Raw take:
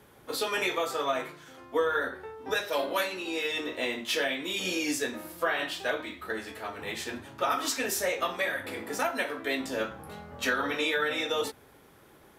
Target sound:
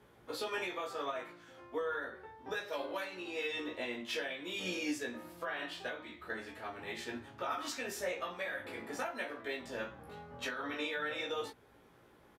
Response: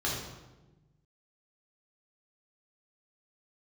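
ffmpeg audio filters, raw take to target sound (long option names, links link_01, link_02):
-filter_complex "[0:a]lowpass=frequency=3900:poles=1,alimiter=limit=-21.5dB:level=0:latency=1:release=412,asplit=2[link_01][link_02];[link_02]adelay=17,volume=-3.5dB[link_03];[link_01][link_03]amix=inputs=2:normalize=0,volume=-7dB"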